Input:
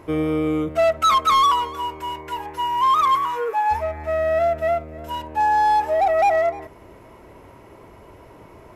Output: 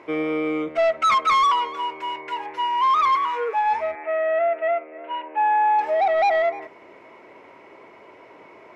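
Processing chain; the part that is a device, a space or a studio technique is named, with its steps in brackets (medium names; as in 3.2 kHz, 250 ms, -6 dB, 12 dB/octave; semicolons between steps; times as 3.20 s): intercom (band-pass 320–4700 Hz; peaking EQ 2.2 kHz +8 dB 0.36 oct; saturation -12 dBFS, distortion -19 dB); 3.95–5.79 s: elliptic band-pass 310–2700 Hz, stop band 40 dB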